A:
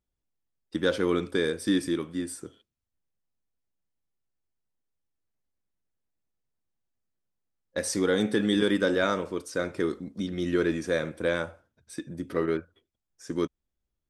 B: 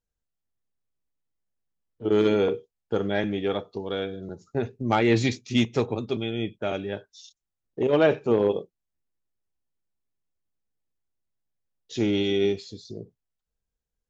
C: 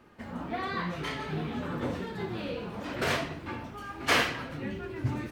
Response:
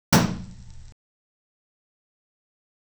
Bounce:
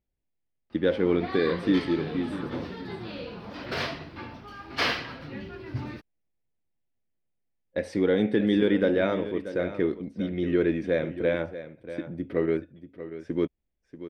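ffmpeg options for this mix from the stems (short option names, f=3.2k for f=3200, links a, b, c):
-filter_complex "[0:a]firequalizer=gain_entry='entry(680,0);entry(1200,-10);entry(2100,0);entry(6700,-25)':delay=0.05:min_phase=1,volume=2dB,asplit=2[a][b];[b]volume=-13dB[c];[2:a]highshelf=f=6k:t=q:w=3:g=-7,adelay=700,volume=-2.5dB[d];[c]aecho=0:1:636:1[e];[a][d][e]amix=inputs=3:normalize=0"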